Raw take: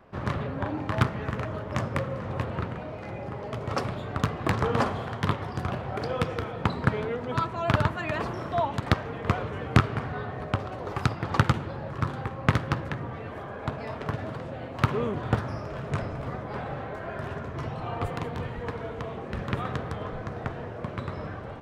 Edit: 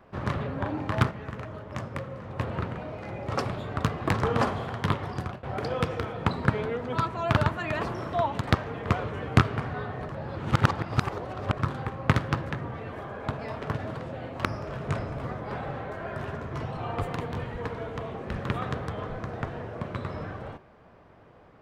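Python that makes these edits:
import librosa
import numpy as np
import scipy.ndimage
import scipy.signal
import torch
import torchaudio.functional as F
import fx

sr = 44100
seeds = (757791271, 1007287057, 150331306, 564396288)

y = fx.edit(x, sr, fx.clip_gain(start_s=1.11, length_s=1.28, db=-6.0),
    fx.cut(start_s=3.27, length_s=0.39),
    fx.fade_out_to(start_s=5.56, length_s=0.26, floor_db=-21.0),
    fx.reverse_span(start_s=10.48, length_s=1.48),
    fx.cut(start_s=14.84, length_s=0.64), tone=tone)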